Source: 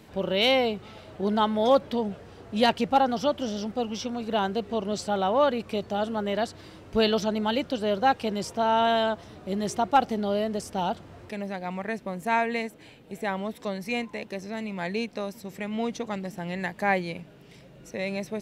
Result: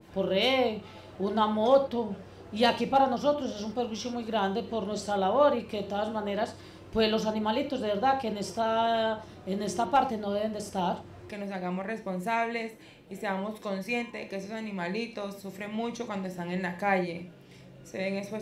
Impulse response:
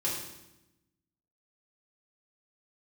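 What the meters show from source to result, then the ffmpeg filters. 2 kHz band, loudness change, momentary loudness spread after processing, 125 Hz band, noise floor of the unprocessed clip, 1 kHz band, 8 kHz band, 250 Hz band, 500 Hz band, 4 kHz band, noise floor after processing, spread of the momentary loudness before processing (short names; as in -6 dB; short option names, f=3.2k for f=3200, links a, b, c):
-3.0 dB, -2.5 dB, 13 LU, -1.0 dB, -50 dBFS, -2.5 dB, -3.0 dB, -3.0 dB, -2.0 dB, -3.5 dB, -50 dBFS, 12 LU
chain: -filter_complex "[0:a]asplit=2[a][b];[1:a]atrim=start_sample=2205,afade=t=out:st=0.16:d=0.01,atrim=end_sample=7497[c];[b][c]afir=irnorm=-1:irlink=0,volume=-7.5dB[d];[a][d]amix=inputs=2:normalize=0,adynamicequalizer=threshold=0.0224:dfrequency=1600:dqfactor=0.7:tfrequency=1600:tqfactor=0.7:attack=5:release=100:ratio=0.375:range=2.5:mode=cutabove:tftype=highshelf,volume=-5.5dB"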